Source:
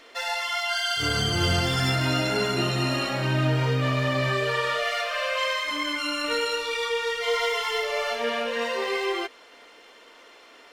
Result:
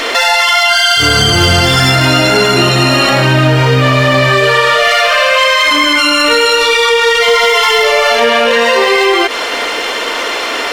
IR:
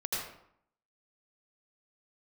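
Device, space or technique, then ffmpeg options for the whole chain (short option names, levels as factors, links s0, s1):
loud club master: -af "equalizer=f=150:w=0.48:g=-3.5,acompressor=threshold=0.0251:ratio=2,asoftclip=type=hard:threshold=0.0631,alimiter=level_in=59.6:limit=0.891:release=50:level=0:latency=1,volume=0.891"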